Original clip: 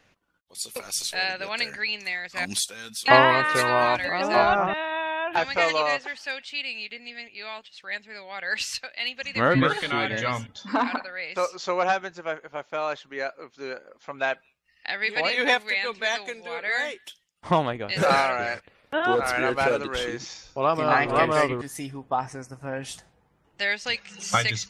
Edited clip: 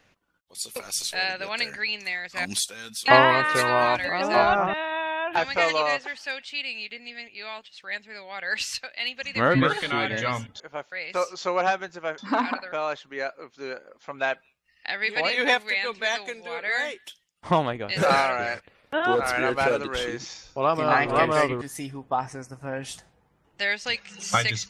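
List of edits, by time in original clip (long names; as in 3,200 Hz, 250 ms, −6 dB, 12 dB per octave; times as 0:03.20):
0:10.60–0:11.14: swap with 0:12.40–0:12.72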